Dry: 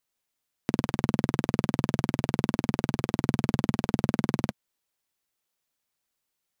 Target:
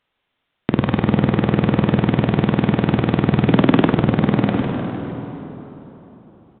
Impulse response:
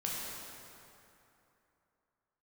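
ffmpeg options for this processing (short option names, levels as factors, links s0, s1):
-filter_complex "[0:a]asplit=3[s0][s1][s2];[s0]afade=t=out:st=3.48:d=0.02[s3];[s1]afreqshift=49,afade=t=in:st=3.48:d=0.02,afade=t=out:st=3.88:d=0.02[s4];[s2]afade=t=in:st=3.88:d=0.02[s5];[s3][s4][s5]amix=inputs=3:normalize=0,asplit=7[s6][s7][s8][s9][s10][s11][s12];[s7]adelay=152,afreqshift=34,volume=0.211[s13];[s8]adelay=304,afreqshift=68,volume=0.12[s14];[s9]adelay=456,afreqshift=102,volume=0.0684[s15];[s10]adelay=608,afreqshift=136,volume=0.0394[s16];[s11]adelay=760,afreqshift=170,volume=0.0224[s17];[s12]adelay=912,afreqshift=204,volume=0.0127[s18];[s6][s13][s14][s15][s16][s17][s18]amix=inputs=7:normalize=0,asplit=2[s19][s20];[1:a]atrim=start_sample=2205,asetrate=32193,aresample=44100[s21];[s20][s21]afir=irnorm=-1:irlink=0,volume=0.282[s22];[s19][s22]amix=inputs=2:normalize=0,aresample=8000,aresample=44100,alimiter=level_in=4.47:limit=0.891:release=50:level=0:latency=1,volume=0.891"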